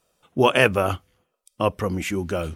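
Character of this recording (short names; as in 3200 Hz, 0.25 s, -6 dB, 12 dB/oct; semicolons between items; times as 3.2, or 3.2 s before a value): noise floor -77 dBFS; spectral tilt -4.0 dB/oct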